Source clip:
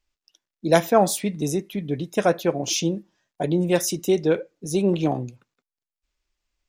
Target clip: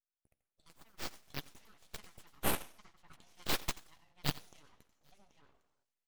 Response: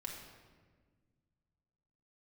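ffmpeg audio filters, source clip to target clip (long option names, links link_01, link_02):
-filter_complex "[0:a]asplit=2[link_01][link_02];[link_02]adelay=874.6,volume=-11dB,highshelf=frequency=4000:gain=-19.7[link_03];[link_01][link_03]amix=inputs=2:normalize=0,acompressor=threshold=-31dB:ratio=12,aderivative,asplit=2[link_04][link_05];[link_05]adelay=14,volume=-9dB[link_06];[link_04][link_06]amix=inputs=2:normalize=0,asplit=2[link_07][link_08];[1:a]atrim=start_sample=2205,afade=type=out:start_time=0.4:duration=0.01,atrim=end_sample=18081,adelay=98[link_09];[link_08][link_09]afir=irnorm=-1:irlink=0,volume=-6dB[link_10];[link_07][link_10]amix=inputs=2:normalize=0,flanger=delay=0.4:depth=5:regen=54:speed=0.45:shape=sinusoidal,aeval=exprs='abs(val(0))':channel_layout=same,aeval=exprs='0.0501*(cos(1*acos(clip(val(0)/0.0501,-1,1)))-cos(1*PI/2))+0.00891*(cos(4*acos(clip(val(0)/0.0501,-1,1)))-cos(4*PI/2))+0.00447*(cos(5*acos(clip(val(0)/0.0501,-1,1)))-cos(5*PI/2))+0.00398*(cos(6*acos(clip(val(0)/0.0501,-1,1)))-cos(6*PI/2))+0.00891*(cos(7*acos(clip(val(0)/0.0501,-1,1)))-cos(7*PI/2))':channel_layout=same,dynaudnorm=framelen=520:gausssize=5:maxgain=12dB,atempo=1.1,highshelf=frequency=11000:gain=-10,volume=3dB"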